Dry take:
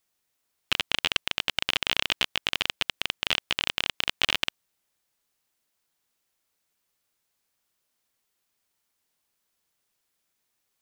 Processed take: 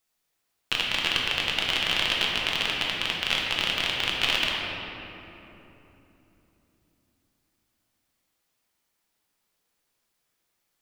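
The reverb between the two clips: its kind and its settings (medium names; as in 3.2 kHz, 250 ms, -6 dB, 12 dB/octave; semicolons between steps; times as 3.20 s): simulated room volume 190 m³, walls hard, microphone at 0.69 m; trim -2 dB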